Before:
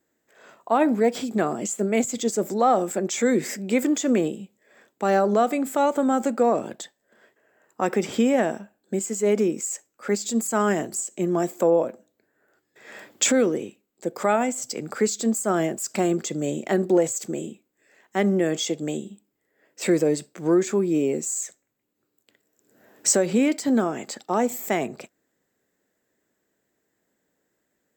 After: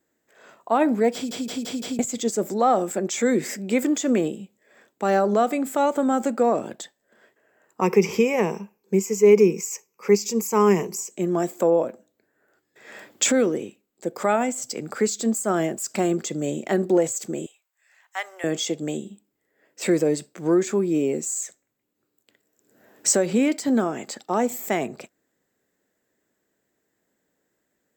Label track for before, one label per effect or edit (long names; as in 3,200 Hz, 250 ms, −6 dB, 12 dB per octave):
1.140000	1.140000	stutter in place 0.17 s, 5 plays
7.810000	11.110000	EQ curve with evenly spaced ripples crests per octave 0.8, crest to trough 16 dB
17.460000	18.440000	inverse Chebyshev high-pass filter stop band from 180 Hz, stop band 70 dB